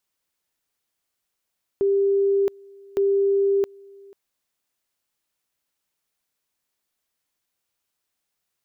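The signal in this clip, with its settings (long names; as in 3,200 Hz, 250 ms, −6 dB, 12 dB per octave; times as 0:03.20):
tone at two levels in turn 396 Hz −16.5 dBFS, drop 26.5 dB, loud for 0.67 s, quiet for 0.49 s, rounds 2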